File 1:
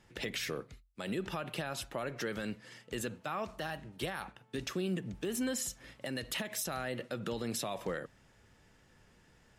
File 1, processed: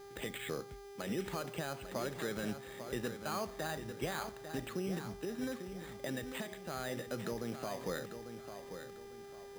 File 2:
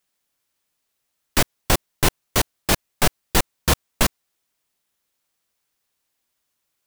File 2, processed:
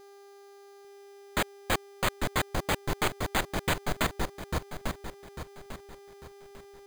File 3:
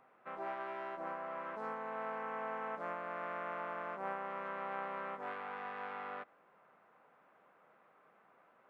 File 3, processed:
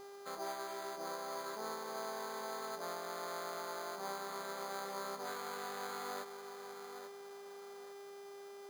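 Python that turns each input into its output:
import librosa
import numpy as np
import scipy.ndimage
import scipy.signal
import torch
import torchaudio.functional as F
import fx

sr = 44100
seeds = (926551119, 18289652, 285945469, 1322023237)

y = fx.rider(x, sr, range_db=4, speed_s=0.5)
y = fx.dmg_buzz(y, sr, base_hz=400.0, harmonics=32, level_db=-50.0, tilt_db=-8, odd_only=False)
y = fx.echo_wet_lowpass(y, sr, ms=847, feedback_pct=34, hz=3100.0, wet_db=-9.0)
y = (np.mod(10.0 ** (12.0 / 20.0) * y + 1.0, 2.0) - 1.0) / 10.0 ** (12.0 / 20.0)
y = np.repeat(scipy.signal.resample_poly(y, 1, 8), 8)[:len(y)]
y = F.gain(torch.from_numpy(y), -2.0).numpy()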